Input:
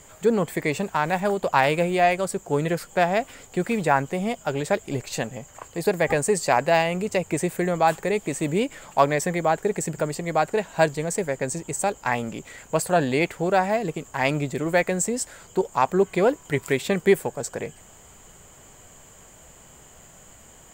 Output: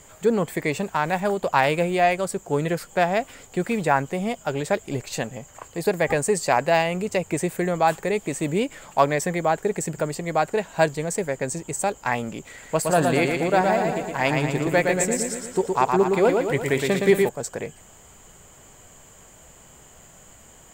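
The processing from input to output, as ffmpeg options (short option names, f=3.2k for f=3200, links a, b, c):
-filter_complex "[0:a]asettb=1/sr,asplit=3[a][b][c];[a]atrim=end=12.514[d];[b]atrim=start=12.51:end=17.29,asetpts=PTS-STARTPTS,afade=t=in:d=0.004:c=qsin,afade=t=out:st=4.776:d=0.004:c=qsin,aecho=1:1:116|232|348|464|580|696|812|928:0.631|0.353|0.198|0.111|0.0621|0.0347|0.0195|0.0109,atrim=end_sample=210798[e];[c]atrim=start=17.286[f];[d][e]acrossfade=d=0.004:c1=hsin:c2=qsin[g];[g][f]acrossfade=d=0.004:c1=qsin:c2=hsin"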